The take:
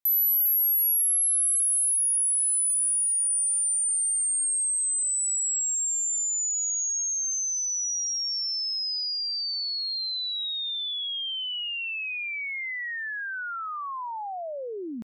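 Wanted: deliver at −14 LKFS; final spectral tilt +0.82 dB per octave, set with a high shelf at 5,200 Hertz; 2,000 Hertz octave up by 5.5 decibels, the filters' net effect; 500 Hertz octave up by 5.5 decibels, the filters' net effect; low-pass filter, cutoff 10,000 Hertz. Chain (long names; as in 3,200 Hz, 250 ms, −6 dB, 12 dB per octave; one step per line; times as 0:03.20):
low-pass filter 10,000 Hz
parametric band 500 Hz +6.5 dB
parametric band 2,000 Hz +7.5 dB
high-shelf EQ 5,200 Hz −6 dB
level +14 dB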